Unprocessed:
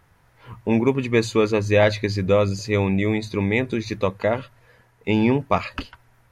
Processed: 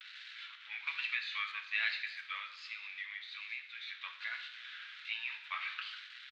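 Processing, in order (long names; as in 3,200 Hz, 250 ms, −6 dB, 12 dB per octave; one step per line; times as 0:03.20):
spike at every zero crossing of −19.5 dBFS
elliptic band-pass filter 1,400–3,800 Hz, stop band 60 dB
0:02.37–0:03.95: downward compressor 6 to 1, threshold −32 dBFS, peak gain reduction 12 dB
flanger 1.4 Hz, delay 5.9 ms, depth 4.4 ms, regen −65%
pitch vibrato 1.2 Hz 99 cents
far-end echo of a speakerphone 330 ms, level −23 dB
on a send at −5 dB: convolution reverb RT60 0.90 s, pre-delay 3 ms
0:00.87–0:01.52: on the sum: multiband upward and downward compressor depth 100%
level −4.5 dB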